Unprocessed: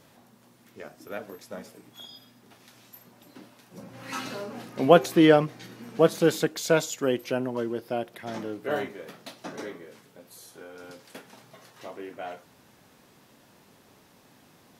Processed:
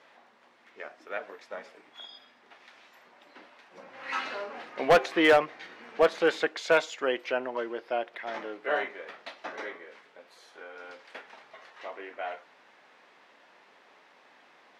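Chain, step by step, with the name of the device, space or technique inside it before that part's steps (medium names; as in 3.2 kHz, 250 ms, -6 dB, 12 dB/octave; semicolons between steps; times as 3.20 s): megaphone (band-pass 590–3100 Hz; peaking EQ 2 kHz +4 dB 0.58 oct; hard clipper -16.5 dBFS, distortion -12 dB); trim +3 dB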